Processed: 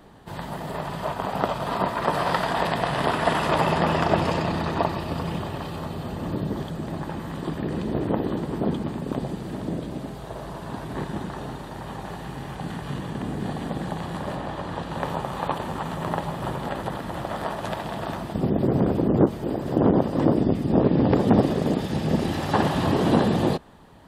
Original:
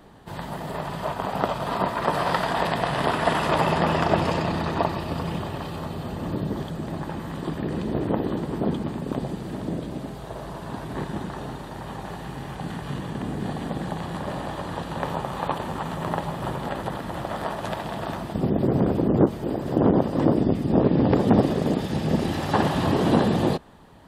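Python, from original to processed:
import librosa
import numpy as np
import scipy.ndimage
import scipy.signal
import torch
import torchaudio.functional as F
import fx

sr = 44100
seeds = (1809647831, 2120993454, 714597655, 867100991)

y = fx.high_shelf(x, sr, hz=fx.line((14.35, 5500.0), (14.92, 10000.0)), db=-9.0, at=(14.35, 14.92), fade=0.02)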